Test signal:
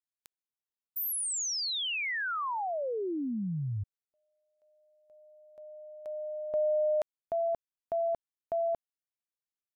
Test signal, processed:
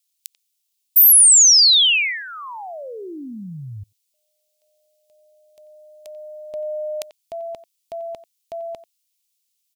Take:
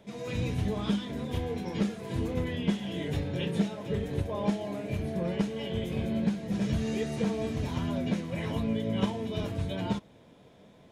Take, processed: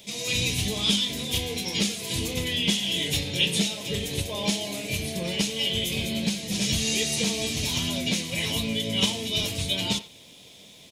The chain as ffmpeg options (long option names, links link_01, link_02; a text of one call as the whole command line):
ffmpeg -i in.wav -filter_complex "[0:a]aexciter=amount=12.9:drive=1:freq=2300,asplit=2[link_01][link_02];[link_02]adelay=90,highpass=300,lowpass=3400,asoftclip=type=hard:threshold=-14dB,volume=-15dB[link_03];[link_01][link_03]amix=inputs=2:normalize=0" out.wav